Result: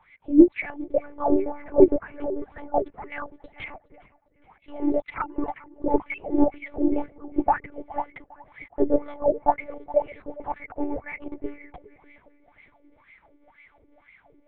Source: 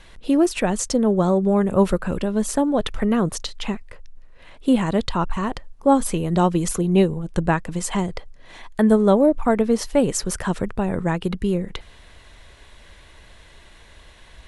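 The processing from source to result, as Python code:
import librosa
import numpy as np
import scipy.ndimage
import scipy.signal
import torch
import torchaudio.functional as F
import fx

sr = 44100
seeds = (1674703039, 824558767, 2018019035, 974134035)

p1 = fx.sine_speech(x, sr, at=(5.15, 6.18))
p2 = fx.high_shelf(p1, sr, hz=2500.0, db=5.0)
p3 = fx.small_body(p2, sr, hz=(370.0, 730.0, 2200.0), ring_ms=20, db=15)
p4 = fx.wah_lfo(p3, sr, hz=2.0, low_hz=320.0, high_hz=2200.0, q=12.0)
p5 = p4 + fx.echo_feedback(p4, sr, ms=411, feedback_pct=45, wet_db=-20.5, dry=0)
y = fx.lpc_monotone(p5, sr, seeds[0], pitch_hz=290.0, order=8)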